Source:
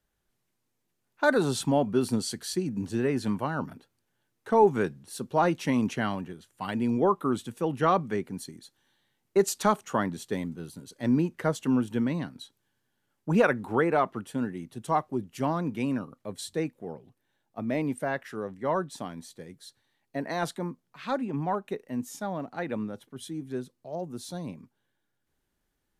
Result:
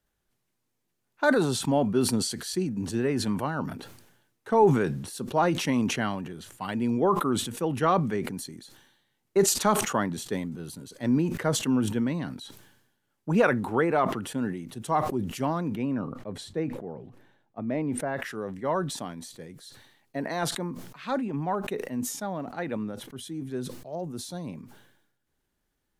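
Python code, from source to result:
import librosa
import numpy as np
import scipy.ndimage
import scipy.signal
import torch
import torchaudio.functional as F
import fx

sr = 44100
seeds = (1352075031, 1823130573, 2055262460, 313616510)

y = fx.lowpass(x, sr, hz=1500.0, slope=6, at=(15.75, 18.17))
y = fx.sustainer(y, sr, db_per_s=62.0)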